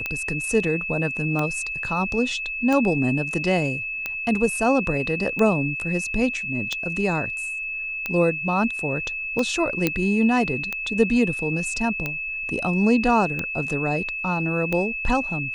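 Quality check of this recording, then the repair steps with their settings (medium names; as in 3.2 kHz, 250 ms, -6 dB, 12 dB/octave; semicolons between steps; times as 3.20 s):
tick 45 rpm -12 dBFS
whine 2.6 kHz -27 dBFS
9.87 s: pop -6 dBFS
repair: de-click; band-stop 2.6 kHz, Q 30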